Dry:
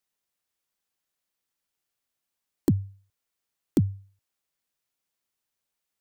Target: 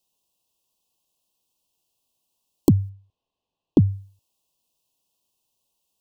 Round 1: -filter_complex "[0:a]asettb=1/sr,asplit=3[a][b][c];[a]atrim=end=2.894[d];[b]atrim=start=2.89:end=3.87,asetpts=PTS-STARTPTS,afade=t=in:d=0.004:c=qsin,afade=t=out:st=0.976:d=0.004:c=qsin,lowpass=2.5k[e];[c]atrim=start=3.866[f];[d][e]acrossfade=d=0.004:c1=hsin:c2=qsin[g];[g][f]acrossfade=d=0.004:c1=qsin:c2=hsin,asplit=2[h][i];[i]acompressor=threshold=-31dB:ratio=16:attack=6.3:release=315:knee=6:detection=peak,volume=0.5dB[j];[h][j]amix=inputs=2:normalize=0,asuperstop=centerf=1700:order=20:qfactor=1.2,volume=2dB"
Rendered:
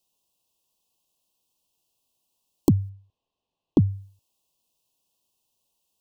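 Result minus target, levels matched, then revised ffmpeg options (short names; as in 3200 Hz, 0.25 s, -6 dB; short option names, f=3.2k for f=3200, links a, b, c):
compressor: peak gain reduction +10 dB
-filter_complex "[0:a]asettb=1/sr,asplit=3[a][b][c];[a]atrim=end=2.894[d];[b]atrim=start=2.89:end=3.87,asetpts=PTS-STARTPTS,afade=t=in:d=0.004:c=qsin,afade=t=out:st=0.976:d=0.004:c=qsin,lowpass=2.5k[e];[c]atrim=start=3.866[f];[d][e]acrossfade=d=0.004:c1=hsin:c2=qsin[g];[g][f]acrossfade=d=0.004:c1=qsin:c2=hsin,asplit=2[h][i];[i]acompressor=threshold=-20dB:ratio=16:attack=6.3:release=315:knee=6:detection=peak,volume=0.5dB[j];[h][j]amix=inputs=2:normalize=0,asuperstop=centerf=1700:order=20:qfactor=1.2,volume=2dB"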